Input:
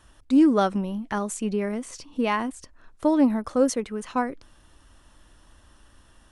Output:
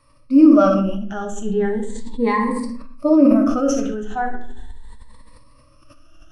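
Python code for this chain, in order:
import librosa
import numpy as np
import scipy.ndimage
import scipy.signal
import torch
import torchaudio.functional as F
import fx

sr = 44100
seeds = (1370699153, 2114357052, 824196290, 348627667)

y = fx.spec_ripple(x, sr, per_octave=0.95, drift_hz=0.37, depth_db=18)
y = scipy.signal.sosfilt(scipy.signal.butter(2, 8900.0, 'lowpass', fs=sr, output='sos'), y)
y = fx.low_shelf(y, sr, hz=110.0, db=8.5)
y = fx.hum_notches(y, sr, base_hz=50, count=10)
y = fx.room_early_taps(y, sr, ms=(61, 76), db=(-15.0, -17.0))
y = fx.vibrato(y, sr, rate_hz=6.4, depth_cents=20.0)
y = fx.hpss(y, sr, part='percussive', gain_db=-13)
y = fx.room_shoebox(y, sr, seeds[0], volume_m3=75.0, walls='mixed', distance_m=0.53)
y = fx.sustainer(y, sr, db_per_s=30.0)
y = y * 10.0 ** (-2.5 / 20.0)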